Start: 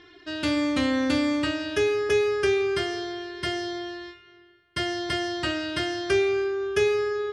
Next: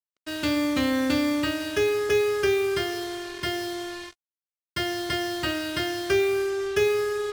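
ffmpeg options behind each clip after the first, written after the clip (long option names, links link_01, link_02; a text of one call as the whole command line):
ffmpeg -i in.wav -af "acrusher=bits=5:mix=0:aa=0.5" out.wav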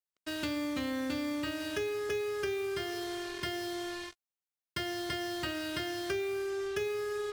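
ffmpeg -i in.wav -af "acompressor=threshold=-31dB:ratio=3,volume=-3dB" out.wav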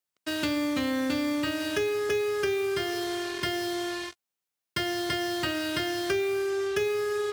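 ffmpeg -i in.wav -af "highpass=82,volume=6.5dB" out.wav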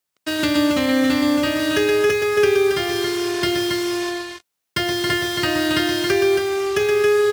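ffmpeg -i in.wav -af "aecho=1:1:122.4|274.1:0.501|0.562,volume=7.5dB" out.wav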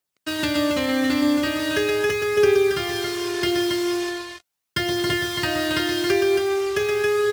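ffmpeg -i in.wav -af "aphaser=in_gain=1:out_gain=1:delay=3.2:decay=0.3:speed=0.4:type=triangular,volume=-3dB" out.wav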